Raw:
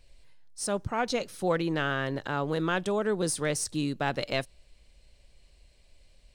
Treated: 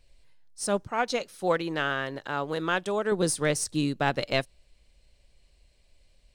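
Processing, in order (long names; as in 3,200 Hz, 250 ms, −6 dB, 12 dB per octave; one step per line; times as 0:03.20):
0:00.83–0:03.12: low-shelf EQ 260 Hz −9 dB
expander for the loud parts 1.5 to 1, over −40 dBFS
level +4.5 dB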